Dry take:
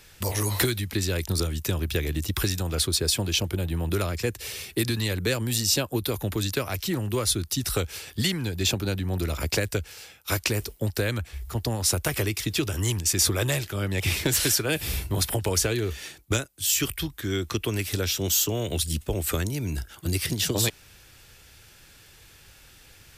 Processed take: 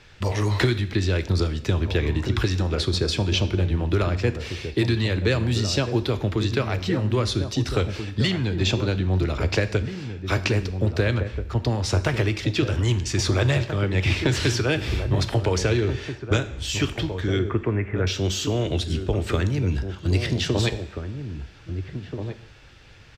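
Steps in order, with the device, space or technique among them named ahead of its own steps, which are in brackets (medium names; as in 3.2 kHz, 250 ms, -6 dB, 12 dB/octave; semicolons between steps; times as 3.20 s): 17.39–18.07 s: steep low-pass 2.2 kHz 48 dB/octave; shout across a valley (distance through air 160 m; echo from a far wall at 280 m, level -8 dB); two-slope reverb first 0.7 s, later 3 s, from -21 dB, DRR 10.5 dB; trim +4 dB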